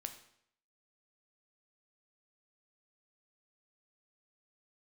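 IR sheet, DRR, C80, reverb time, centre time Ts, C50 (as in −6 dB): 6.5 dB, 13.5 dB, 0.70 s, 12 ms, 10.5 dB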